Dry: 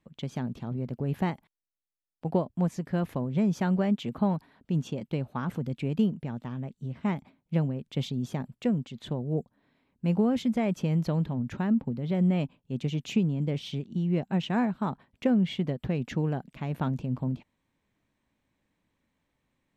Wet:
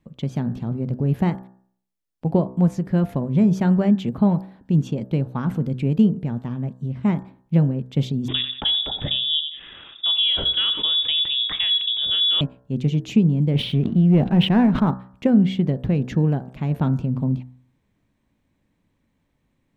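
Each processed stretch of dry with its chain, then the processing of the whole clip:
0:08.28–0:12.41: voice inversion scrambler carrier 3,600 Hz + repeating echo 89 ms, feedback 17%, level −15 dB + envelope flattener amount 50%
0:13.55–0:14.91: low-pass filter 3,600 Hz 24 dB per octave + leveller curve on the samples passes 1 + level that may fall only so fast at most 59 dB per second
whole clip: low-shelf EQ 420 Hz +8.5 dB; hum removal 63.29 Hz, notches 29; level +2.5 dB

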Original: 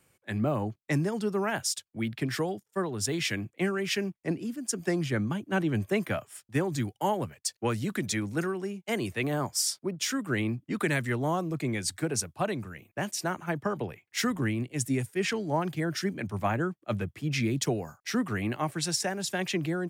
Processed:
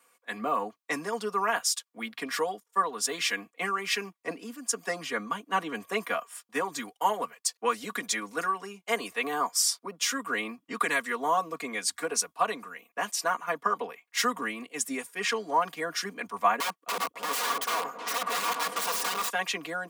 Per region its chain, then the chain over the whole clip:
0:16.60–0:19.30: wrap-around overflow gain 28.5 dB + echo whose low-pass opens from repeat to repeat 277 ms, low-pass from 400 Hz, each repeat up 1 octave, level −3 dB
whole clip: high-pass filter 490 Hz 12 dB per octave; parametric band 1,100 Hz +13.5 dB 0.22 octaves; comb filter 4.2 ms, depth 96%

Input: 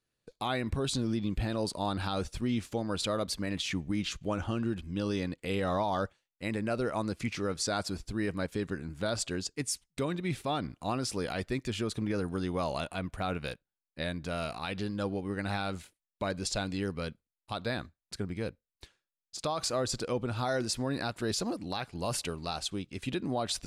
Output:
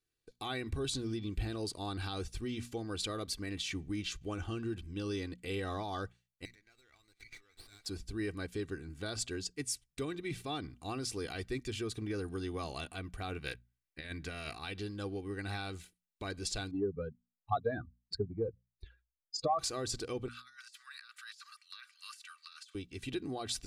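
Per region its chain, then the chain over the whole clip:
0:06.45–0:07.86: downward compressor 12 to 1, threshold −34 dBFS + pair of resonant band-passes 2,900 Hz, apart 0.81 octaves + windowed peak hold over 5 samples
0:13.46–0:14.54: parametric band 2,000 Hz +8.5 dB 0.81 octaves + compressor whose output falls as the input rises −34 dBFS, ratio −0.5
0:16.71–0:19.59: expanding power law on the bin magnitudes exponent 2.8 + parametric band 1,000 Hz +11.5 dB 2.4 octaves + transient designer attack +5 dB, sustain 0 dB
0:20.28–0:22.75: Chebyshev high-pass filter 1,200 Hz, order 6 + high-shelf EQ 2,400 Hz −6.5 dB + compressor whose output falls as the input rises −46 dBFS, ratio −0.5
whole clip: parametric band 800 Hz −7 dB 1.6 octaves; mains-hum notches 60/120/180/240 Hz; comb filter 2.6 ms, depth 54%; level −4 dB

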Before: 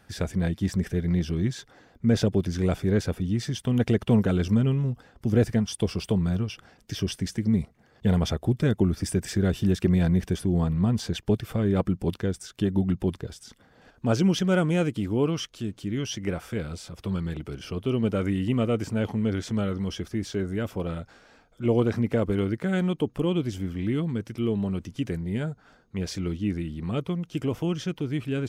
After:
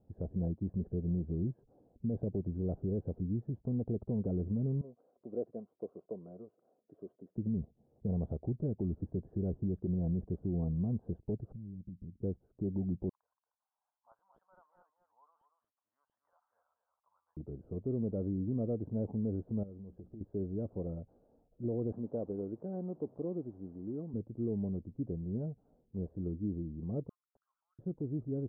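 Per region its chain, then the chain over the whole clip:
0:04.81–0:07.36: high-pass filter 490 Hz + notch comb filter 850 Hz + one half of a high-frequency compander encoder only
0:11.52–0:12.22: inverse Chebyshev low-pass filter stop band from 880 Hz, stop band 60 dB + downward compressor 4 to 1, threshold −36 dBFS
0:13.09–0:17.37: elliptic high-pass filter 990 Hz, stop band 60 dB + hard clipping −23.5 dBFS + single-tap delay 231 ms −8.5 dB
0:19.63–0:20.21: downward compressor 8 to 1, threshold −36 dBFS + mains-hum notches 60/120/180/240/300 Hz
0:21.92–0:24.14: linear delta modulator 32 kbit/s, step −40.5 dBFS + high-pass filter 390 Hz 6 dB per octave + high-shelf EQ 2,200 Hz +10.5 dB
0:27.09–0:27.79: Butterworth high-pass 1,300 Hz 48 dB per octave + wrap-around overflow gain 33 dB
whole clip: inverse Chebyshev low-pass filter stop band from 2,200 Hz, stop band 60 dB; brickwall limiter −18.5 dBFS; level −8 dB

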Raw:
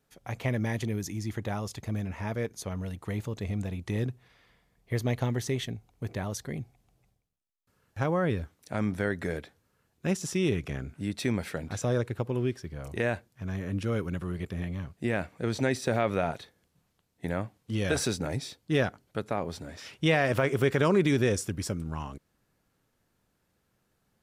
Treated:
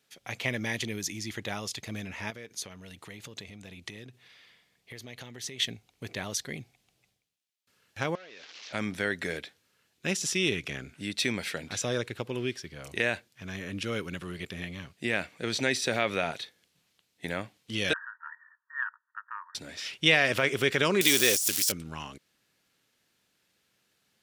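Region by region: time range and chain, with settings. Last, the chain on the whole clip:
0:02.30–0:05.60: downward compressor 12 to 1, threshold −37 dBFS + high-pass filter 54 Hz
0:08.15–0:08.73: linear delta modulator 32 kbit/s, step −45 dBFS + high-pass filter 510 Hz + downward compressor 12 to 1, threshold −45 dBFS
0:17.93–0:19.55: linear-phase brick-wall band-pass 900–1,900 Hz + highs frequency-modulated by the lows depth 0.18 ms
0:21.01–0:21.72: spike at every zero crossing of −25.5 dBFS + bass and treble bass −10 dB, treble +11 dB + compressor whose output falls as the input rises −24 dBFS, ratio −0.5
whole clip: meter weighting curve D; de-essing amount 30%; high-shelf EQ 10,000 Hz +5.5 dB; level −2 dB

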